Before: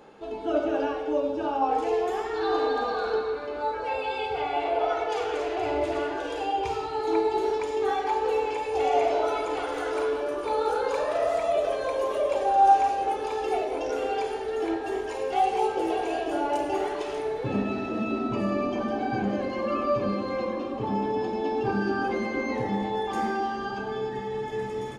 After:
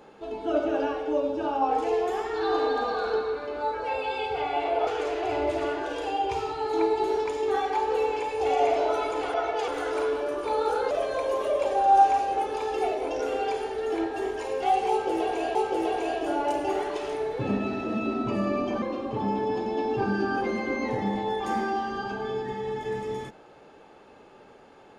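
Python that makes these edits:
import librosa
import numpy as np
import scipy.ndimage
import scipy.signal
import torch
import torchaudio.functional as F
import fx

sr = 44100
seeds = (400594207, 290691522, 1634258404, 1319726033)

y = fx.edit(x, sr, fx.move(start_s=4.87, length_s=0.34, to_s=9.68),
    fx.cut(start_s=10.91, length_s=0.7),
    fx.repeat(start_s=15.6, length_s=0.65, count=2),
    fx.cut(start_s=18.87, length_s=1.62), tone=tone)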